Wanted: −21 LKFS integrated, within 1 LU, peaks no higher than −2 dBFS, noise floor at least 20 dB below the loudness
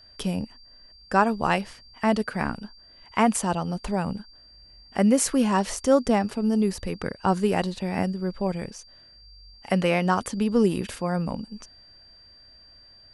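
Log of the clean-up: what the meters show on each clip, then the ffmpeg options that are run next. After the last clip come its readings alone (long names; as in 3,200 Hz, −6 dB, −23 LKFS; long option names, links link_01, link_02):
interfering tone 4,700 Hz; level of the tone −50 dBFS; integrated loudness −25.0 LKFS; sample peak −6.5 dBFS; target loudness −21.0 LKFS
→ -af "bandreject=frequency=4700:width=30"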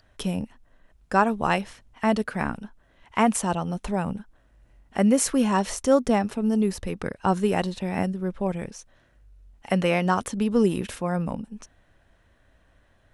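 interfering tone none found; integrated loudness −25.0 LKFS; sample peak −7.0 dBFS; target loudness −21.0 LKFS
→ -af "volume=4dB"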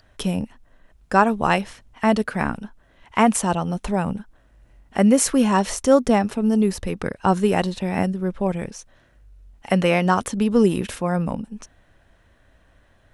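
integrated loudness −21.0 LKFS; sample peak −3.0 dBFS; background noise floor −58 dBFS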